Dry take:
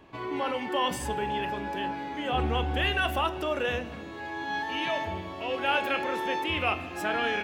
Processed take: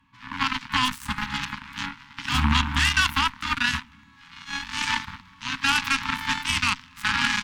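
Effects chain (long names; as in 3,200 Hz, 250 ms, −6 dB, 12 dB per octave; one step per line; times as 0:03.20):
harmonic generator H 4 −12 dB, 6 −16 dB, 7 −16 dB, 8 −31 dB, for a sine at −12.5 dBFS
0:00.85–0:02.44: hard clipping −23 dBFS, distortion −19 dB
Chebyshev band-stop filter 270–910 Hz, order 4
boost into a limiter +21 dB
level −8 dB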